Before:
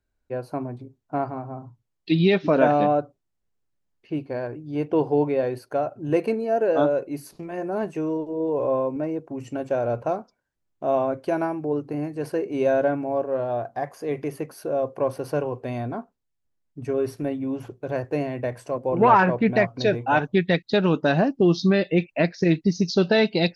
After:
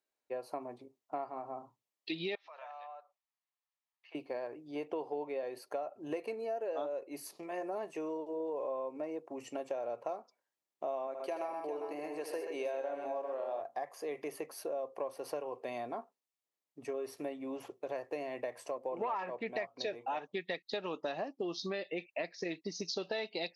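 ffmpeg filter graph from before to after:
-filter_complex "[0:a]asettb=1/sr,asplit=3[a][b][c];[a]atrim=end=2.354[d];[b]atrim=start=2.35:end=4.15,asetpts=PTS-STARTPTS,afade=t=in:d=0.004:c=qsin,afade=t=out:st=1.796:d=0.004:c=qsin,highpass=f=840:w=0.5412,highpass=f=840:w=1.3066,aemphasis=mode=reproduction:type=50fm,acompressor=threshold=-50dB:ratio=2.5:attack=3.2:release=140:knee=1:detection=peak[e];[c]atrim=start=4.146[f];[d][e]acrossfade=d=0.004:c1=hsin:c2=qsin[g];[g][f]acrossfade=d=0.004:c1=qsin:c2=hsin,asettb=1/sr,asplit=3[h][i][j];[h]atrim=end=11.074[k];[i]atrim=start=11.07:end=13.61,asetpts=PTS-STARTPTS,afade=t=in:d=0.004:c=qsin,afade=t=out:st=2.536:d=0.004:c=qsin,highpass=f=410:p=1,aecho=1:1:77|127|401:0.398|0.447|0.237,atrim=end_sample=112014[l];[j]atrim=start=13.606[m];[k][l]acrossfade=d=0.004:c1=hsin:c2=qsin[n];[n][m]acrossfade=d=0.004:c1=qsin:c2=hsin,highpass=490,bandreject=f=1.5k:w=5.1,acompressor=threshold=-33dB:ratio=5,volume=-2.5dB"

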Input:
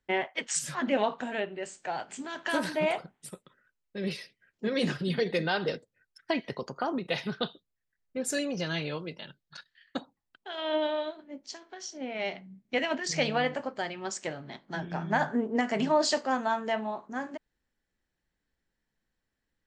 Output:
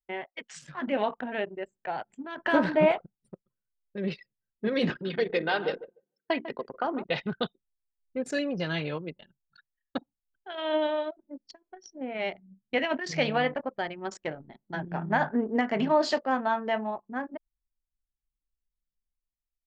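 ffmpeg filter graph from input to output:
-filter_complex "[0:a]asettb=1/sr,asplit=3[a][b][c];[a]atrim=end=2.374[d];[b]atrim=start=2.37:end=2.92,asetpts=PTS-STARTPTS,afade=t=in:d=0.004:c=qsin,afade=t=out:st=0.546:d=0.004:c=qsin,highshelf=f=2.5k:g=-11.5,acontrast=71[e];[c]atrim=start=2.916[f];[d][e]acrossfade=d=0.004:c1=hsin:c2=qsin[g];[g][f]acrossfade=d=0.004:c1=qsin:c2=hsin,asettb=1/sr,asplit=3[h][i][j];[h]atrim=end=4.904[k];[i]atrim=start=4.9:end=7.04,asetpts=PTS-STARTPTS,afade=t=in:d=0.004:c=qsin,afade=t=out:st=2.136:d=0.004:c=qsin,highpass=250,lowpass=6.5k,bandreject=f=60:t=h:w=6,bandreject=f=120:t=h:w=6,bandreject=f=180:t=h:w=6,bandreject=f=240:t=h:w=6,bandreject=f=300:t=h:w=6,bandreject=f=360:t=h:w=6,bandreject=f=420:t=h:w=6,asplit=2[l][m];[m]adelay=148,lowpass=f=4.9k:p=1,volume=-12dB,asplit=2[n][o];[o]adelay=148,lowpass=f=4.9k:p=1,volume=0.35,asplit=2[p][q];[q]adelay=148,lowpass=f=4.9k:p=1,volume=0.35,asplit=2[r][s];[s]adelay=148,lowpass=f=4.9k:p=1,volume=0.35[t];[l][n][p][r][t]amix=inputs=5:normalize=0,atrim=end_sample=94374[u];[j]atrim=start=7.036[v];[k][u]acrossfade=d=0.004:c1=hsin:c2=qsin[w];[w][v]acrossfade=d=0.004:c1=qsin:c2=hsin,anlmdn=1.58,lowpass=3.7k,dynaudnorm=f=370:g=5:m=9dB,volume=-7dB"

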